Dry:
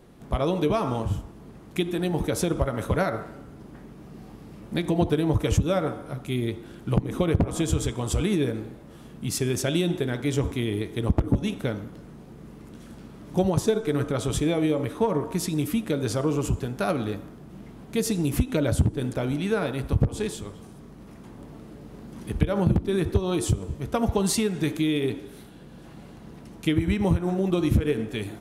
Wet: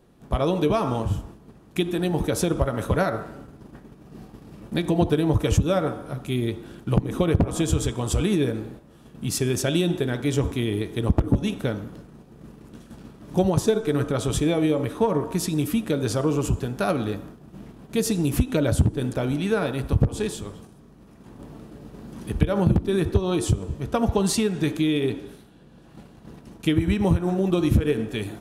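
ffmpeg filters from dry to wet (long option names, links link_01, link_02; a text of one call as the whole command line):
ffmpeg -i in.wav -filter_complex "[0:a]asettb=1/sr,asplit=3[link_01][link_02][link_03];[link_01]atrim=end=23.094[link_04];[link_02]atrim=start=23.09:end=25.89,asetpts=PTS-STARTPTS,afade=type=in:duration=0.004:curve=qsin,afade=type=out:start_time=2.796:duration=0.004:curve=qsin,highshelf=frequency=10000:gain=-6[link_05];[link_03]atrim=start=25.886[link_06];[link_04][link_05]acrossfade=duration=0.004:curve1=hsin:curve2=qsin[link_07];[link_07][link_06]acrossfade=duration=0.004:curve1=qsin:curve2=hsin,bandreject=frequency=2100:width=15,agate=range=-7dB:threshold=-43dB:ratio=16:detection=peak,volume=2dB" out.wav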